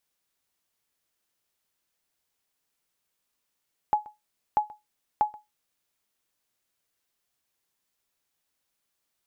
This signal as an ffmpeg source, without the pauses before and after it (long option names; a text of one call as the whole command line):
ffmpeg -f lavfi -i "aevalsrc='0.2*(sin(2*PI*844*mod(t,0.64))*exp(-6.91*mod(t,0.64)/0.19)+0.0794*sin(2*PI*844*max(mod(t,0.64)-0.13,0))*exp(-6.91*max(mod(t,0.64)-0.13,0)/0.19))':duration=1.92:sample_rate=44100" out.wav